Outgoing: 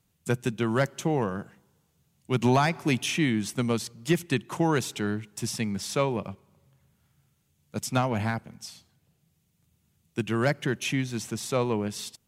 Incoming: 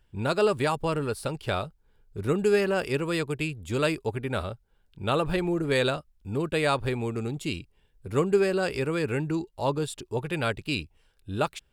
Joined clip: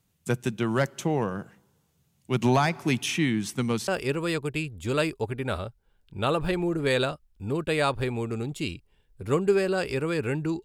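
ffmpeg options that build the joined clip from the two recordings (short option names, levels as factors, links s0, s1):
-filter_complex "[0:a]asettb=1/sr,asplit=3[s0][s1][s2];[s0]atrim=end=2.884[s3];[s1]atrim=start=2.88:end=3.88,asetpts=PTS-STARTPTS,afade=t=in:d=0.004:c=qsin,afade=t=out:st=0.996:d=0.004:c=qsin,equalizer=f=610:w=7.3:g=-11.5[s4];[s2]atrim=start=3.876[s5];[s3][s4]acrossfade=d=0.004:c1=hsin:c2=qsin[s6];[s6][s5]acrossfade=d=0.004:c1=qsin:c2=hsin,apad=whole_dur=10.64,atrim=end=10.64,atrim=end=3.882[s7];[1:a]atrim=start=2.728:end=9.49[s8];[s7][s8]acrossfade=d=0.004:c1=hsin:c2=hsin"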